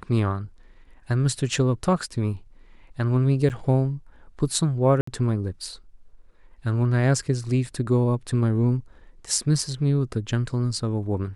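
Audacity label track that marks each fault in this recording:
3.490000	3.500000	gap 9 ms
5.010000	5.070000	gap 64 ms

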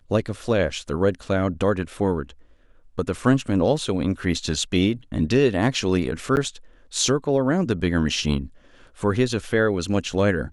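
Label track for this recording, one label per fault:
6.360000	6.370000	gap 9.3 ms

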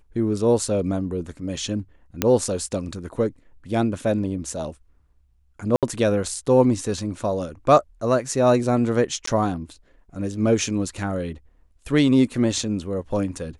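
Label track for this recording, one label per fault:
2.220000	2.220000	pop -3 dBFS
5.760000	5.830000	gap 67 ms
9.260000	9.270000	gap 14 ms

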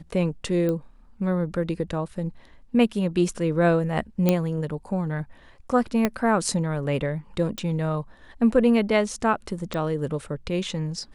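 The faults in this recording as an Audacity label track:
0.690000	0.690000	pop -16 dBFS
4.290000	4.290000	pop -7 dBFS
6.050000	6.050000	pop -8 dBFS
7.580000	7.580000	pop
9.740000	9.740000	pop -18 dBFS

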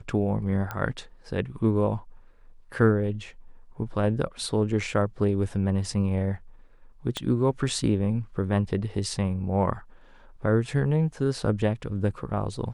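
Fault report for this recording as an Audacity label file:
0.710000	0.710000	pop -18 dBFS
7.170000	7.170000	pop -15 dBFS

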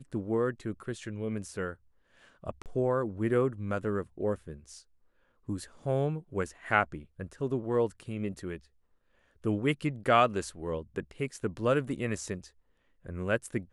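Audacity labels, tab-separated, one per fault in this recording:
2.620000	2.660000	gap 38 ms

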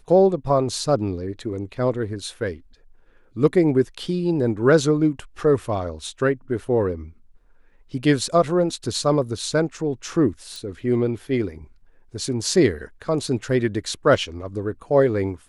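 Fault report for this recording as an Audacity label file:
10.560000	10.560000	pop

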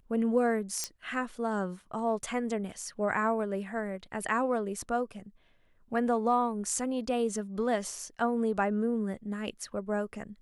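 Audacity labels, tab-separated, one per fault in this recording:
0.840000	0.840000	pop -16 dBFS

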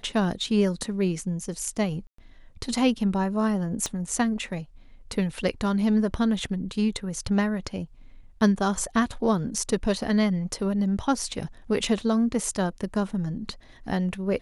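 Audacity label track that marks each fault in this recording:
2.070000	2.180000	gap 0.114 s
3.860000	3.860000	pop -15 dBFS

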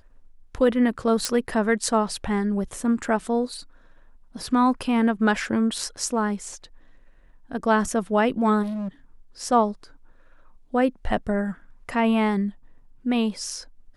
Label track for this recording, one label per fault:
1.250000	1.250000	pop -8 dBFS
8.620000	8.880000	clipped -27 dBFS

